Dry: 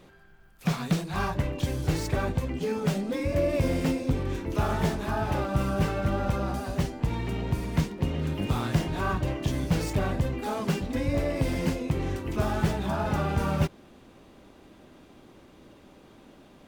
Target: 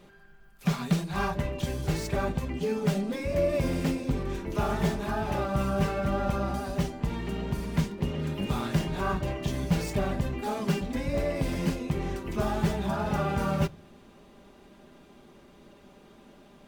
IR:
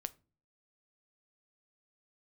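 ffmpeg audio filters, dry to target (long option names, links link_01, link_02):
-filter_complex "[0:a]asplit=2[link_01][link_02];[1:a]atrim=start_sample=2205,adelay=5[link_03];[link_02][link_03]afir=irnorm=-1:irlink=0,volume=-4dB[link_04];[link_01][link_04]amix=inputs=2:normalize=0,volume=-2dB"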